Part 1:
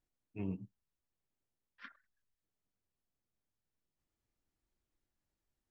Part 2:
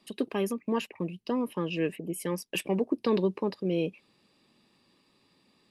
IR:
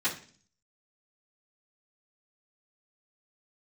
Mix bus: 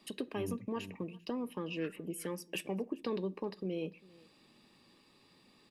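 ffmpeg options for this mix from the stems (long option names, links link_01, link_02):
-filter_complex "[0:a]volume=-1.5dB,asplit=2[link_01][link_02];[link_02]volume=-8.5dB[link_03];[1:a]acompressor=threshold=-45dB:ratio=2,volume=1.5dB,asplit=3[link_04][link_05][link_06];[link_05]volume=-21.5dB[link_07];[link_06]volume=-23.5dB[link_08];[2:a]atrim=start_sample=2205[link_09];[link_07][link_09]afir=irnorm=-1:irlink=0[link_10];[link_03][link_08]amix=inputs=2:normalize=0,aecho=0:1:396:1[link_11];[link_01][link_04][link_10][link_11]amix=inputs=4:normalize=0"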